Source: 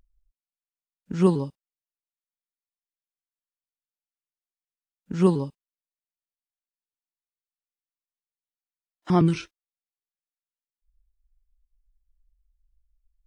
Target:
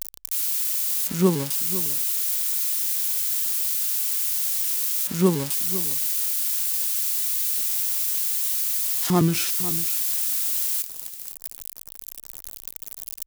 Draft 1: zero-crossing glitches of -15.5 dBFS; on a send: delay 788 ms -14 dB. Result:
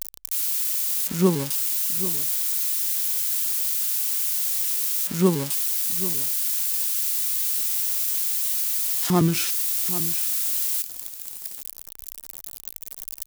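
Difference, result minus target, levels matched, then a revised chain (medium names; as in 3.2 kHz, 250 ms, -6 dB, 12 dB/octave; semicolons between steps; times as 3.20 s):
echo 287 ms late
zero-crossing glitches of -15.5 dBFS; on a send: delay 501 ms -14 dB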